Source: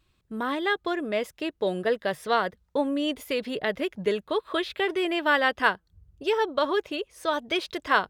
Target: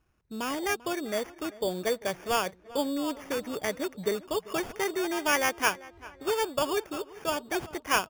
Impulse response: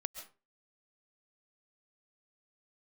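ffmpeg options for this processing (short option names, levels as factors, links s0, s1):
-filter_complex "[0:a]acrusher=samples=11:mix=1:aa=0.000001,asplit=2[s0][s1];[s1]adelay=393,lowpass=f=2800:p=1,volume=0.112,asplit=2[s2][s3];[s3]adelay=393,lowpass=f=2800:p=1,volume=0.44,asplit=2[s4][s5];[s5]adelay=393,lowpass=f=2800:p=1,volume=0.44[s6];[s0][s2][s4][s6]amix=inputs=4:normalize=0,volume=0.668"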